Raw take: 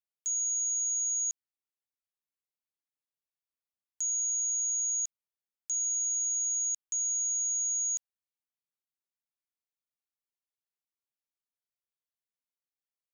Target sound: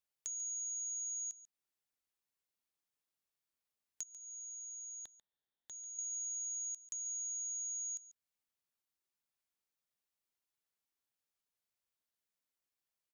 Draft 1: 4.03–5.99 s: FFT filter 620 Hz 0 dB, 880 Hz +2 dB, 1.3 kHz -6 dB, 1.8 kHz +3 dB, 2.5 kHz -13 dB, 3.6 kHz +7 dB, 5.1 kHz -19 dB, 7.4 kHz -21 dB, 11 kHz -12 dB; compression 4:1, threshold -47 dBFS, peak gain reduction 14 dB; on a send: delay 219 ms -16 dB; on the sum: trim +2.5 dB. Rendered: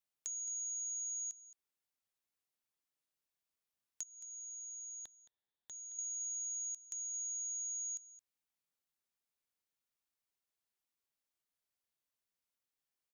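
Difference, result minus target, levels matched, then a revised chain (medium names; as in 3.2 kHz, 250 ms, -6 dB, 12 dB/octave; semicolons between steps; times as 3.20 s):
echo 77 ms late
4.03–5.99 s: FFT filter 620 Hz 0 dB, 880 Hz +2 dB, 1.3 kHz -6 dB, 1.8 kHz +3 dB, 2.5 kHz -13 dB, 3.6 kHz +7 dB, 5.1 kHz -19 dB, 7.4 kHz -21 dB, 11 kHz -12 dB; compression 4:1, threshold -47 dBFS, peak gain reduction 14 dB; on a send: delay 142 ms -16 dB; on the sum: trim +2.5 dB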